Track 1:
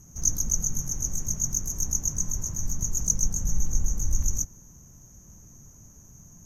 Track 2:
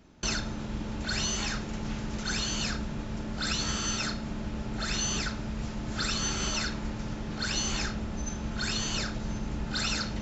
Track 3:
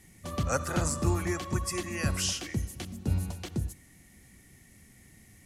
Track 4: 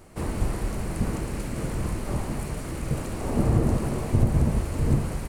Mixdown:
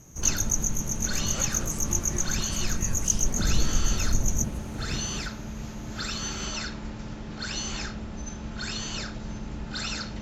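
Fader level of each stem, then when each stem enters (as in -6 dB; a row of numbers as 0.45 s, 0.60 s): -0.5 dB, -2.0 dB, -9.5 dB, -12.0 dB; 0.00 s, 0.00 s, 0.85 s, 0.00 s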